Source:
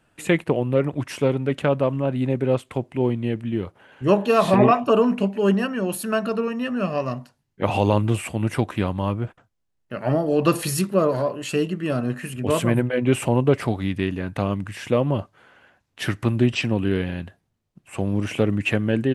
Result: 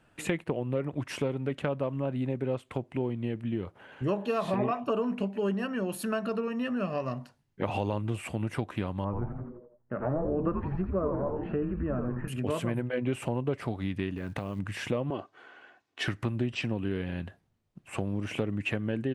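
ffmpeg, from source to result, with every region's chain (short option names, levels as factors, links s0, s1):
-filter_complex "[0:a]asettb=1/sr,asplit=3[s0][s1][s2];[s0]atrim=end=9.044[s3];[s1]atrim=start=9.04:end=12.28,asetpts=PTS-STARTPTS,afade=t=in:d=0.004:c=qsin,afade=t=out:st=3.236:d=0.004:c=qsin,lowpass=f=1600:w=0.5412,lowpass=f=1600:w=1.3066,asplit=7[s4][s5][s6][s7][s8][s9][s10];[s5]adelay=84,afreqshift=-120,volume=0.562[s11];[s6]adelay=168,afreqshift=-240,volume=0.275[s12];[s7]adelay=252,afreqshift=-360,volume=0.135[s13];[s8]adelay=336,afreqshift=-480,volume=0.0661[s14];[s9]adelay=420,afreqshift=-600,volume=0.0324[s15];[s10]adelay=504,afreqshift=-720,volume=0.0158[s16];[s4][s11][s12][s13][s14][s15][s16]amix=inputs=7:normalize=0,atrim=end_sample=142884[s17];[s2]atrim=start=12.276[s18];[s3][s17]acrossfade=d=0.004:c1=hsin:c2=qsin[s19];[s19][s18]acrossfade=d=0.004:c1=qsin:c2=hsin,asettb=1/sr,asplit=3[s20][s21][s22];[s20]atrim=end=14.174[s23];[s21]atrim=start=14.17:end=14.59,asetpts=PTS-STARTPTS,afade=t=in:d=0.004:c=qsin,afade=t=out:st=0.416:d=0.004:c=qsin,acrusher=bits=7:mode=log:mix=0:aa=0.000001,acompressor=threshold=0.0501:ratio=5:attack=3.2:release=140:knee=1:detection=peak[s24];[s22]atrim=start=14.586[s25];[s23][s24]acrossfade=d=0.004:c1=hsin:c2=qsin[s26];[s26][s25]acrossfade=d=0.004:c1=qsin:c2=hsin,asettb=1/sr,asplit=3[s27][s28][s29];[s27]atrim=end=15.104[s30];[s28]atrim=start=15.1:end=16.08,asetpts=PTS-STARTPTS,afade=t=in:d=0.004:c=qsin,afade=t=out:st=0.976:d=0.004:c=qsin,highpass=240,lowpass=7500,aecho=1:1:2.7:0.44,atrim=end_sample=43218[s31];[s29]atrim=start=16.076[s32];[s30][s31]acrossfade=d=0.004:c1=hsin:c2=qsin[s33];[s33][s32]acrossfade=d=0.004:c1=qsin:c2=hsin,highshelf=f=5700:g=-6.5,acompressor=threshold=0.0316:ratio=3"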